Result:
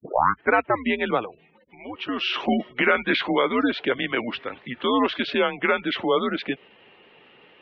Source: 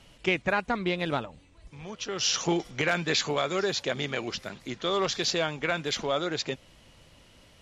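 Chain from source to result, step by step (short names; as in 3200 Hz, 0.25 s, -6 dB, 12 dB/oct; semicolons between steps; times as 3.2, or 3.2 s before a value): tape start at the beginning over 0.51 s; spectral gate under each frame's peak -25 dB strong; mistuned SSB -120 Hz 350–3300 Hz; gain +7.5 dB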